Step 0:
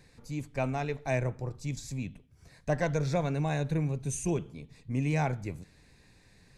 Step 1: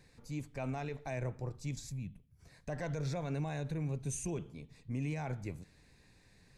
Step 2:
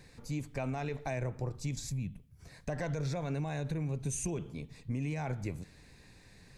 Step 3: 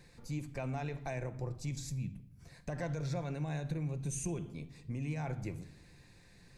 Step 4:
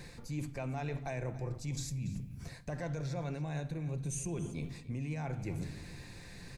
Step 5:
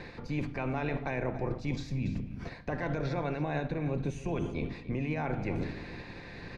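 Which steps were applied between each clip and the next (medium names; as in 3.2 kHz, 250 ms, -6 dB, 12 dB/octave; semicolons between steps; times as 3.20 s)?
time-frequency box 1.90–2.40 s, 220–9400 Hz -9 dB; peak limiter -25 dBFS, peak gain reduction 8.5 dB; trim -4 dB
compression, threshold -38 dBFS, peak gain reduction 6 dB; trim +6.5 dB
simulated room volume 3300 m³, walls furnished, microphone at 0.84 m; trim -3.5 dB
reverse; compression 6:1, threshold -46 dBFS, peak gain reduction 13.5 dB; reverse; delay 285 ms -16.5 dB; trim +10.5 dB
spectral peaks clipped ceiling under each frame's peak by 13 dB; distance through air 290 m; trim +6 dB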